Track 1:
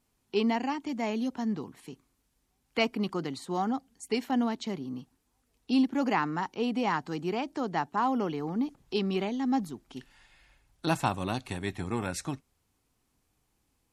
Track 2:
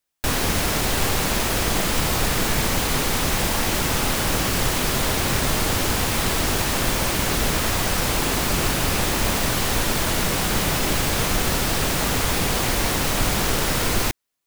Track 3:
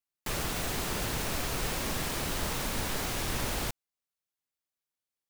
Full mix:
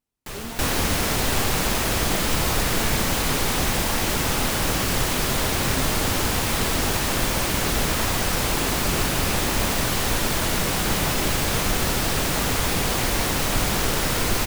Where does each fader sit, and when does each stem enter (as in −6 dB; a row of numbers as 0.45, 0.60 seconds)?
−12.0, −1.0, −1.5 decibels; 0.00, 0.35, 0.00 seconds